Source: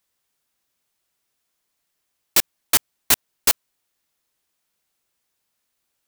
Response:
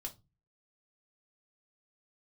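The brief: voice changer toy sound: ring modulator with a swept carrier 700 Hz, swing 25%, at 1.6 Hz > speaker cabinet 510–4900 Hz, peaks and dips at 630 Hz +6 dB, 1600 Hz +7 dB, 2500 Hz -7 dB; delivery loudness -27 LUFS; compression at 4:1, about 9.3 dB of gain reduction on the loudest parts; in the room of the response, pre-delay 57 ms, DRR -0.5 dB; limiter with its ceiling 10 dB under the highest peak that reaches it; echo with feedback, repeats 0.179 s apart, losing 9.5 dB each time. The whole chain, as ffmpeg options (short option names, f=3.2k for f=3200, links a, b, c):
-filter_complex "[0:a]acompressor=threshold=-23dB:ratio=4,alimiter=limit=-15.5dB:level=0:latency=1,aecho=1:1:179|358|537|716:0.335|0.111|0.0365|0.012,asplit=2[a][b];[1:a]atrim=start_sample=2205,adelay=57[c];[b][c]afir=irnorm=-1:irlink=0,volume=3.5dB[d];[a][d]amix=inputs=2:normalize=0,aeval=exprs='val(0)*sin(2*PI*700*n/s+700*0.25/1.6*sin(2*PI*1.6*n/s))':c=same,highpass=510,equalizer=f=630:t=q:w=4:g=6,equalizer=f=1.6k:t=q:w=4:g=7,equalizer=f=2.5k:t=q:w=4:g=-7,lowpass=f=4.9k:w=0.5412,lowpass=f=4.9k:w=1.3066,volume=13dB"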